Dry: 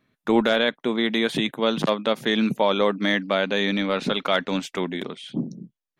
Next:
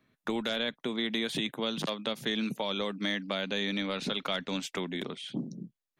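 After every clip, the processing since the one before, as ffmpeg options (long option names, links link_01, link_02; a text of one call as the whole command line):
ffmpeg -i in.wav -filter_complex "[0:a]acrossover=split=190|2700[link_01][link_02][link_03];[link_01]acompressor=threshold=-39dB:ratio=4[link_04];[link_02]acompressor=threshold=-32dB:ratio=4[link_05];[link_03]acompressor=threshold=-30dB:ratio=4[link_06];[link_04][link_05][link_06]amix=inputs=3:normalize=0,volume=-2dB" out.wav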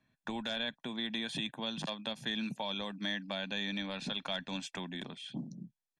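ffmpeg -i in.wav -af "lowpass=frequency=9800:width=0.5412,lowpass=frequency=9800:width=1.3066,aecho=1:1:1.2:0.57,volume=-6dB" out.wav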